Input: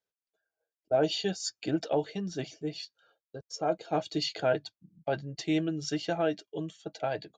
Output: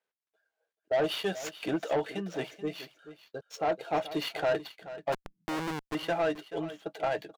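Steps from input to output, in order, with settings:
running median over 9 samples
0:05.12–0:05.95: comparator with hysteresis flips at −32 dBFS
mid-hump overdrive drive 19 dB, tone 4,000 Hz, clips at −14 dBFS
single-tap delay 432 ms −14.5 dB
level −5 dB

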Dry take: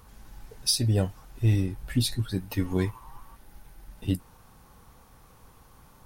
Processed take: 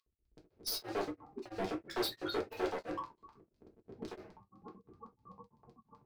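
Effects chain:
loose part that buzzes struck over −31 dBFS, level −22 dBFS
0:00.89–0:03.05: high-pass filter 60 Hz 12 dB per octave
gate on every frequency bin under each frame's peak −10 dB strong
bass and treble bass +8 dB, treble −12 dB
automatic gain control gain up to 9.5 dB
brickwall limiter −14.5 dBFS, peak gain reduction 12.5 dB
wave folding −28.5 dBFS
auto-filter high-pass square 7.9 Hz 380–4,700 Hz
hard clipping −35.5 dBFS, distortion −7 dB
convolution reverb, pre-delay 4 ms, DRR −1.5 dB
tremolo along a rectified sine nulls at 3 Hz

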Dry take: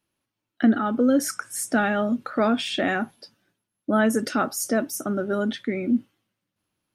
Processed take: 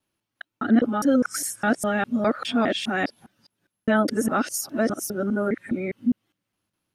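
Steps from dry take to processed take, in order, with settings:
reversed piece by piece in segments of 204 ms
healed spectral selection 0:05.32–0:05.84, 2,500–7,200 Hz

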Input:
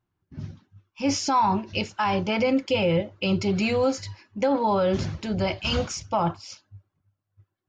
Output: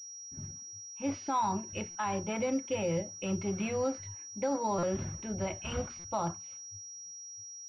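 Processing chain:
mains-hum notches 60/120/180/240 Hz
buffer that repeats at 0:00.67/0:01.90/0:04.78/0:05.99/0:07.06, samples 256, times 8
switching amplifier with a slow clock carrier 5,700 Hz
level −9 dB

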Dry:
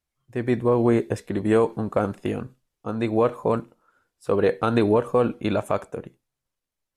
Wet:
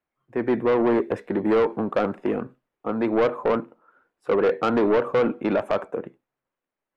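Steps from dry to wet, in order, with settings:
three-way crossover with the lows and the highs turned down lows −17 dB, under 190 Hz, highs −22 dB, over 2,400 Hz
soft clipping −20.5 dBFS, distortion −10 dB
level +5.5 dB

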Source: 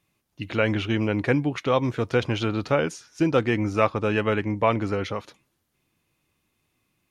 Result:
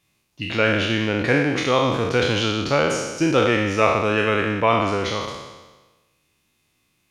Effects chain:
peak hold with a decay on every bin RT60 1.24 s
parametric band 5,400 Hz +6 dB 2.5 octaves

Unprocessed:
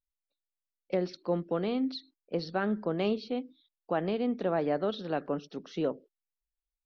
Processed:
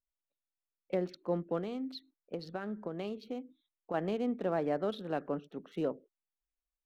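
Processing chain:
adaptive Wiener filter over 9 samples
0:01.58–0:03.94: downward compressor, threshold −32 dBFS, peak gain reduction 7.5 dB
level −3 dB

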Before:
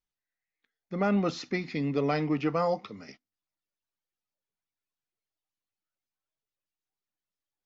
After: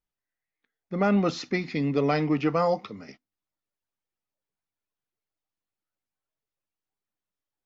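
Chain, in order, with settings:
one half of a high-frequency compander decoder only
level +3.5 dB

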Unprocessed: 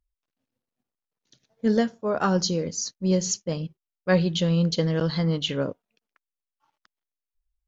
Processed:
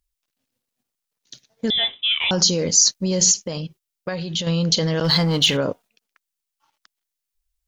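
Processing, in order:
0:05.04–0:05.57: leveller curve on the samples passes 1
brickwall limiter −24 dBFS, peak gain reduction 14.5 dB
0:03.31–0:04.47: downward compressor 10 to 1, threshold −35 dBFS, peak gain reduction 8 dB
high-shelf EQ 2,200 Hz +11.5 dB
0:01.70–0:02.31: voice inversion scrambler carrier 3,700 Hz
dynamic equaliser 780 Hz, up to +5 dB, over −49 dBFS, Q 1.5
noise gate −53 dBFS, range −8 dB
level +9 dB

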